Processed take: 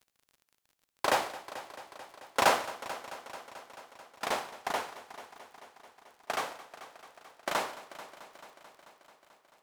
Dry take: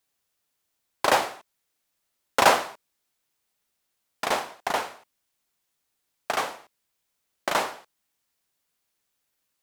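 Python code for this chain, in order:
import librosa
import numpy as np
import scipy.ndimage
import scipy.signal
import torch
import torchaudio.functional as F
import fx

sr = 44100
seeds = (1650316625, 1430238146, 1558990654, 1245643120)

y = fx.echo_heads(x, sr, ms=219, heads='first and second', feedback_pct=66, wet_db=-18)
y = fx.dmg_crackle(y, sr, seeds[0], per_s=40.0, level_db=-41.0)
y = y * librosa.db_to_amplitude(-6.5)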